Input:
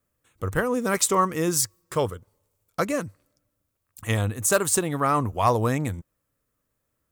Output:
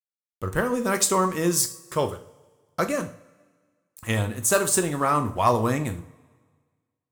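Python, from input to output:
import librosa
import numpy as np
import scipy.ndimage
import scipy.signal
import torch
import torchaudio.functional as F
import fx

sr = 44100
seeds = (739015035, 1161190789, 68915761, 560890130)

y = np.sign(x) * np.maximum(np.abs(x) - 10.0 ** (-50.0 / 20.0), 0.0)
y = fx.rev_double_slope(y, sr, seeds[0], early_s=0.39, late_s=1.6, knee_db=-20, drr_db=6.0)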